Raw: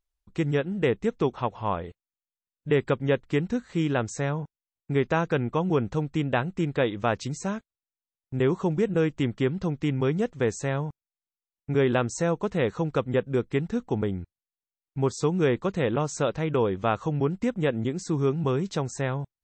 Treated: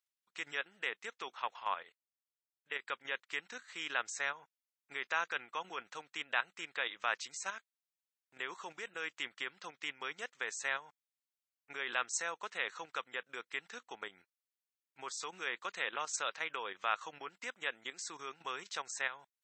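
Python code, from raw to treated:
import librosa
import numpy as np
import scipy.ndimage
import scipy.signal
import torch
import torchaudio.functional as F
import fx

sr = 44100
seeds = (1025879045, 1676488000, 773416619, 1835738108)

y = fx.level_steps(x, sr, step_db=10, at=(1.83, 2.9))
y = fx.level_steps(y, sr, step_db=9)
y = scipy.signal.sosfilt(scipy.signal.cheby1(2, 1.0, 1600.0, 'highpass', fs=sr, output='sos'), y)
y = F.gain(torch.from_numpy(y), 3.0).numpy()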